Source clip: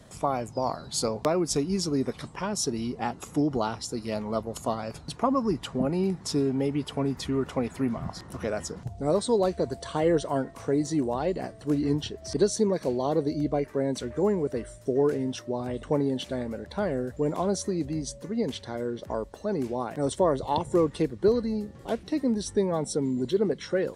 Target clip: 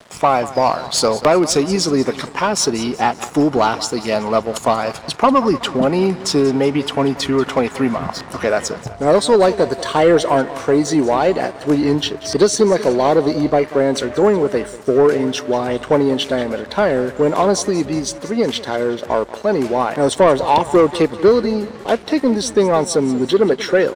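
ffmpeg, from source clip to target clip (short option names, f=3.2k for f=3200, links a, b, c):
-filter_complex "[0:a]aecho=1:1:186|372|558|744:0.141|0.0678|0.0325|0.0156,aeval=exprs='sgn(val(0))*max(abs(val(0))-0.00266,0)':c=same,asplit=2[a][b];[b]highpass=f=720:p=1,volume=15dB,asoftclip=type=tanh:threshold=-11dB[c];[a][c]amix=inputs=2:normalize=0,lowpass=f=4k:p=1,volume=-6dB,volume=9dB"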